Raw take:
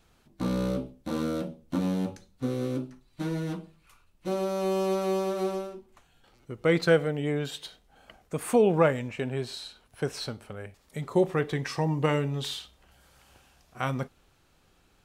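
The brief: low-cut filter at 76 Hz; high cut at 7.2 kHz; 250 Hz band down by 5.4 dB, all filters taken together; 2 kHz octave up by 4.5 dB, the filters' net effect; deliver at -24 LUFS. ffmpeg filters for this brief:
-af "highpass=76,lowpass=7200,equalizer=f=250:t=o:g=-8.5,equalizer=f=2000:t=o:g=6,volume=2.24"

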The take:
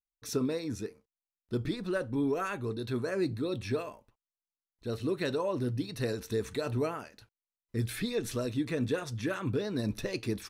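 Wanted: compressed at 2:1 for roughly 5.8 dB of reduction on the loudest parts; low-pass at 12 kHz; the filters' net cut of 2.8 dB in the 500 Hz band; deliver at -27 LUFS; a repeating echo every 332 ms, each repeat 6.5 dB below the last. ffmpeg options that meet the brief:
-af "lowpass=12000,equalizer=f=500:t=o:g=-3.5,acompressor=threshold=0.0126:ratio=2,aecho=1:1:332|664|996|1328|1660|1992:0.473|0.222|0.105|0.0491|0.0231|0.0109,volume=3.98"

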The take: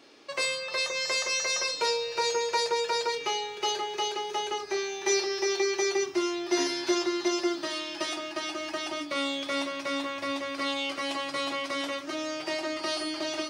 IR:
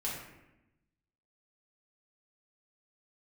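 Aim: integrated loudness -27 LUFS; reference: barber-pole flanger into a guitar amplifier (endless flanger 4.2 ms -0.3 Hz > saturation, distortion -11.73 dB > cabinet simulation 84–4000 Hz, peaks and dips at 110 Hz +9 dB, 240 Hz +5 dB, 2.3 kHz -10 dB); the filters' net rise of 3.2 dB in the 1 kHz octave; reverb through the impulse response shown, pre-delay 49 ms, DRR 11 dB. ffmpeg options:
-filter_complex "[0:a]equalizer=f=1000:t=o:g=4,asplit=2[s0][s1];[1:a]atrim=start_sample=2205,adelay=49[s2];[s1][s2]afir=irnorm=-1:irlink=0,volume=0.2[s3];[s0][s3]amix=inputs=2:normalize=0,asplit=2[s4][s5];[s5]adelay=4.2,afreqshift=-0.3[s6];[s4][s6]amix=inputs=2:normalize=1,asoftclip=threshold=0.0376,highpass=84,equalizer=f=110:t=q:w=4:g=9,equalizer=f=240:t=q:w=4:g=5,equalizer=f=2300:t=q:w=4:g=-10,lowpass=f=4000:w=0.5412,lowpass=f=4000:w=1.3066,volume=2.82"

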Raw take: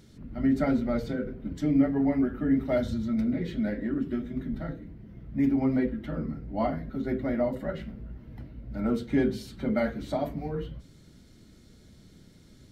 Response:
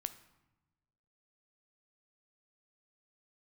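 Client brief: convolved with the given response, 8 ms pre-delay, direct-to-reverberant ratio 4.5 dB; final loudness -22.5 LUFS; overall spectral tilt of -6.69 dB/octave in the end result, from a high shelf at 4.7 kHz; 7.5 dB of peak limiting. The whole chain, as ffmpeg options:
-filter_complex "[0:a]highshelf=f=4700:g=4,alimiter=limit=0.106:level=0:latency=1,asplit=2[s0][s1];[1:a]atrim=start_sample=2205,adelay=8[s2];[s1][s2]afir=irnorm=-1:irlink=0,volume=0.75[s3];[s0][s3]amix=inputs=2:normalize=0,volume=1.88"

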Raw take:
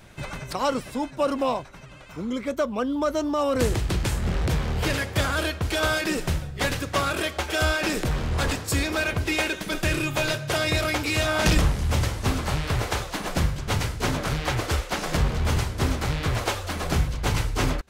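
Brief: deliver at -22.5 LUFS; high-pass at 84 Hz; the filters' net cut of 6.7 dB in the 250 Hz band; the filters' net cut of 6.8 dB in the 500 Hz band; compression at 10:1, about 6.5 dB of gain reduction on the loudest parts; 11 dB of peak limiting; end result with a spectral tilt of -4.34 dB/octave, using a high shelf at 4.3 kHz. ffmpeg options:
-af "highpass=84,equalizer=f=250:t=o:g=-7,equalizer=f=500:t=o:g=-7,highshelf=f=4300:g=-5,acompressor=threshold=0.0398:ratio=10,volume=5.62,alimiter=limit=0.2:level=0:latency=1"

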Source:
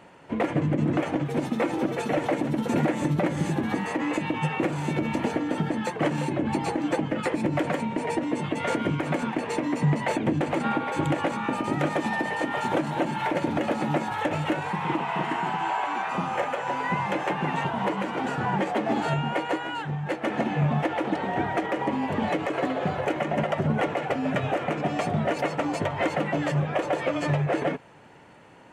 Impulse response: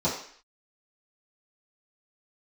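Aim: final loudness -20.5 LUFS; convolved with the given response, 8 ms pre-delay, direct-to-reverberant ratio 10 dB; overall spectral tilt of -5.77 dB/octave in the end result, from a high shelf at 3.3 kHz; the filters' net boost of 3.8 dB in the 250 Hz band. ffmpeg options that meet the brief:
-filter_complex "[0:a]equalizer=f=250:t=o:g=5,highshelf=f=3300:g=-5,asplit=2[s0][s1];[1:a]atrim=start_sample=2205,adelay=8[s2];[s1][s2]afir=irnorm=-1:irlink=0,volume=0.0841[s3];[s0][s3]amix=inputs=2:normalize=0,volume=1.41"

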